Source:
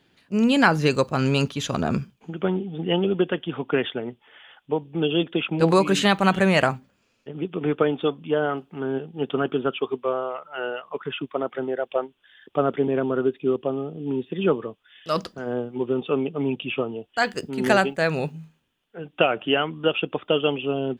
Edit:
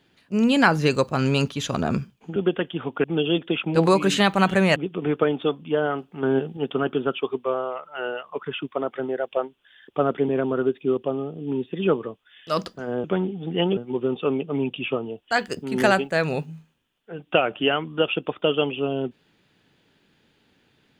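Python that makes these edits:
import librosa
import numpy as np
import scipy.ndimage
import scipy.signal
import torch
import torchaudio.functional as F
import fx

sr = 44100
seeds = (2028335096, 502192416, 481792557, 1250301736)

y = fx.edit(x, sr, fx.move(start_s=2.36, length_s=0.73, to_s=15.63),
    fx.cut(start_s=3.77, length_s=1.12),
    fx.cut(start_s=6.61, length_s=0.74),
    fx.clip_gain(start_s=8.82, length_s=0.34, db=5.5), tone=tone)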